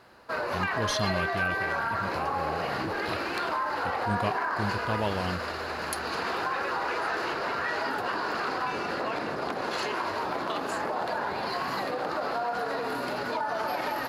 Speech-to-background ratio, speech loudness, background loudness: -4.5 dB, -35.0 LUFS, -30.5 LUFS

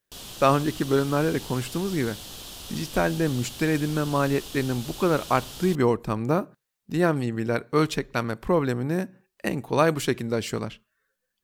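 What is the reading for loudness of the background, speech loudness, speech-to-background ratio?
-38.5 LUFS, -25.5 LUFS, 13.0 dB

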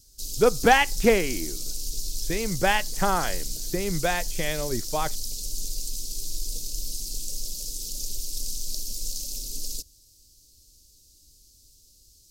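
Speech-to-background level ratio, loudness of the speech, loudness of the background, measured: 7.5 dB, -25.0 LUFS, -32.5 LUFS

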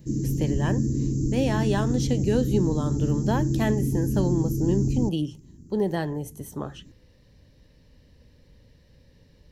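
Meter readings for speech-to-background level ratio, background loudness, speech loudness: -1.5 dB, -26.5 LUFS, -28.0 LUFS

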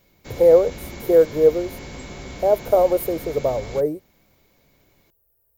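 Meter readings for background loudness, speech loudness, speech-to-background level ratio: -37.0 LUFS, -19.0 LUFS, 18.0 dB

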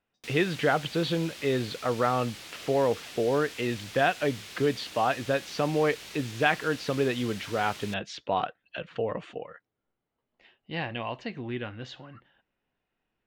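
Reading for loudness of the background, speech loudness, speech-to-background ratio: -42.0 LUFS, -29.0 LUFS, 13.0 dB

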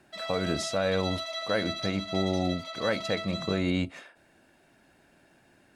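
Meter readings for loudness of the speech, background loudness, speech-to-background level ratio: -30.5 LUFS, -35.5 LUFS, 5.0 dB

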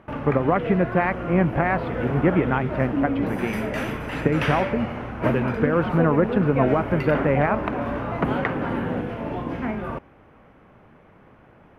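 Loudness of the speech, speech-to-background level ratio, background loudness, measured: -23.5 LUFS, 4.0 dB, -27.5 LUFS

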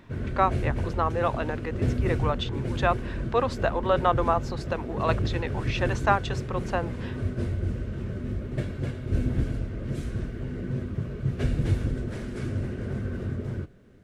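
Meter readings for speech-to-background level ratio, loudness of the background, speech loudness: 2.5 dB, -31.0 LUFS, -28.5 LUFS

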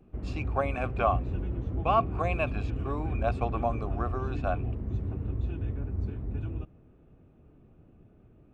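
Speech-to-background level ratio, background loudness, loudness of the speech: 2.0 dB, -34.0 LUFS, -32.0 LUFS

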